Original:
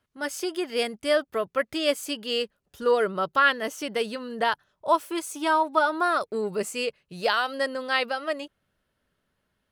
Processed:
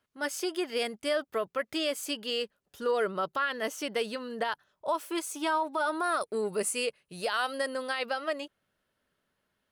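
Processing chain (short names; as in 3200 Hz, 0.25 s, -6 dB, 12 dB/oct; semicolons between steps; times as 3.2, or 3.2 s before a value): low shelf 140 Hz -9.5 dB; limiter -19 dBFS, peak gain reduction 11.5 dB; 5.75–7.99 bell 9600 Hz +13 dB 0.26 oct; gain -1.5 dB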